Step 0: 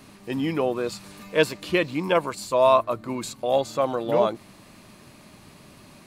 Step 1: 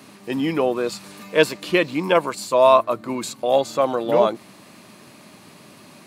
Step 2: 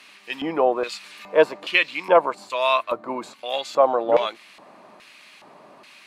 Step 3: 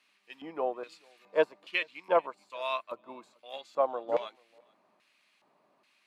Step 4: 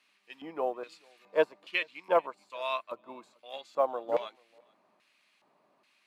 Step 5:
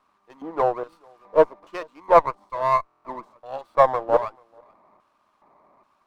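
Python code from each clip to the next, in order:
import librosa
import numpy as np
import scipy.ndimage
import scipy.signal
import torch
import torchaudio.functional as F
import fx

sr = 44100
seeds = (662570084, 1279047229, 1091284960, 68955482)

y1 = scipy.signal.sosfilt(scipy.signal.butter(2, 160.0, 'highpass', fs=sr, output='sos'), x)
y1 = y1 * 10.0 ** (4.0 / 20.0)
y2 = fx.high_shelf(y1, sr, hz=9300.0, db=6.5)
y2 = fx.filter_lfo_bandpass(y2, sr, shape='square', hz=1.2, low_hz=770.0, high_hz=2600.0, q=1.5)
y2 = y2 * 10.0 ** (5.5 / 20.0)
y3 = scipy.signal.sosfilt(scipy.signal.butter(2, 93.0, 'highpass', fs=sr, output='sos'), y2)
y3 = y3 + 10.0 ** (-22.0 / 20.0) * np.pad(y3, (int(438 * sr / 1000.0), 0))[:len(y3)]
y3 = fx.upward_expand(y3, sr, threshold_db=-35.0, expansion=1.5)
y3 = y3 * 10.0 ** (-9.0 / 20.0)
y4 = fx.quant_float(y3, sr, bits=6)
y5 = fx.high_shelf_res(y4, sr, hz=1600.0, db=-12.0, q=3.0)
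y5 = fx.buffer_glitch(y5, sr, at_s=(2.84,), block=1024, repeats=8)
y5 = fx.running_max(y5, sr, window=5)
y5 = y5 * 10.0 ** (8.0 / 20.0)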